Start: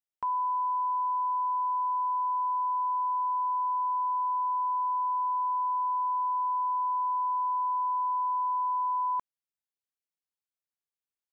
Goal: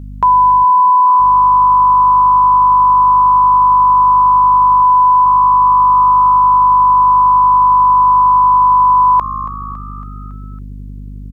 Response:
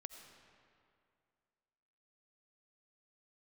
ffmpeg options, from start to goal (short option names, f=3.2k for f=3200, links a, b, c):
-filter_complex "[0:a]asettb=1/sr,asplit=3[a][b][c];[a]atrim=end=4.824[d];[b]atrim=start=4.82:end=5.25,asetpts=PTS-STARTPTS,afade=t=in:d=0.004:c=qsin,afade=t=out:st=0.426:d=0.004:c=qsin,acontrast=29[e];[c]atrim=start=5.246[f];[d][e]acrossfade=d=0.004:c1=hsin:c2=qsin[g];[g][f]acrossfade=d=0.004:c1=qsin:c2=hsin,aeval=exprs='val(0)+0.00316*(sin(2*PI*50*n/s)+sin(2*PI*2*50*n/s)/2+sin(2*PI*3*50*n/s)/3+sin(2*PI*4*50*n/s)/4+sin(2*PI*5*50*n/s)/5)':c=same,asplit=3[h][i][j];[h]afade=t=out:st=0.63:d=0.02[k];[i]asuperpass=centerf=830:order=4:qfactor=0.64,afade=t=in:st=0.63:d=0.02,afade=t=out:st=1.19:d=0.02[l];[j]afade=t=in:st=1.19:d=0.02[m];[k][l][m]amix=inputs=3:normalize=0,asplit=2[n][o];[o]asplit=5[p][q][r][s][t];[p]adelay=278,afreqshift=61,volume=-17dB[u];[q]adelay=556,afreqshift=122,volume=-22.2dB[v];[r]adelay=834,afreqshift=183,volume=-27.4dB[w];[s]adelay=1112,afreqshift=244,volume=-32.6dB[x];[t]adelay=1390,afreqshift=305,volume=-37.8dB[y];[u][v][w][x][y]amix=inputs=5:normalize=0[z];[n][z]amix=inputs=2:normalize=0,alimiter=level_in=26.5dB:limit=-1dB:release=50:level=0:latency=1,volume=-3.5dB"